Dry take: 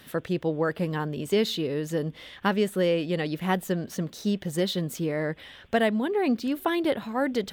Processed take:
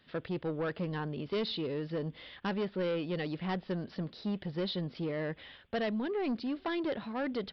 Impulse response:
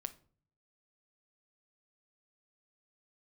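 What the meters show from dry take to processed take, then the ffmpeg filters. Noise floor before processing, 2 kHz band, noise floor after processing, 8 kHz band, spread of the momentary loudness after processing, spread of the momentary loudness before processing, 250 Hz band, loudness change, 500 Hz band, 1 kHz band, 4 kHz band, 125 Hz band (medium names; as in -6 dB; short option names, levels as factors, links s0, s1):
-50 dBFS, -9.0 dB, -60 dBFS, under -25 dB, 5 LU, 6 LU, -8.0 dB, -8.0 dB, -8.5 dB, -9.5 dB, -7.5 dB, -7.0 dB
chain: -af "agate=range=0.355:threshold=0.00447:ratio=16:detection=peak,aresample=11025,asoftclip=type=tanh:threshold=0.0708,aresample=44100,volume=0.562"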